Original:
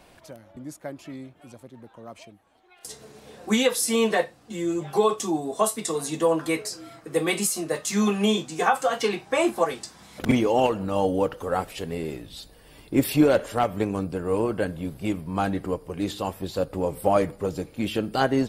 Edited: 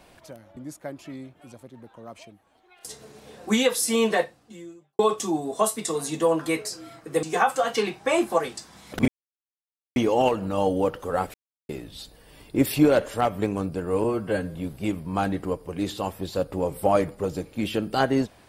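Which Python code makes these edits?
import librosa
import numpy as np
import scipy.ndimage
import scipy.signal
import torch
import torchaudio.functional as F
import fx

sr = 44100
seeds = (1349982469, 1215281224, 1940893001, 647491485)

y = fx.edit(x, sr, fx.fade_out_span(start_s=4.22, length_s=0.77, curve='qua'),
    fx.cut(start_s=7.23, length_s=1.26),
    fx.insert_silence(at_s=10.34, length_s=0.88),
    fx.silence(start_s=11.72, length_s=0.35),
    fx.stretch_span(start_s=14.42, length_s=0.34, factor=1.5), tone=tone)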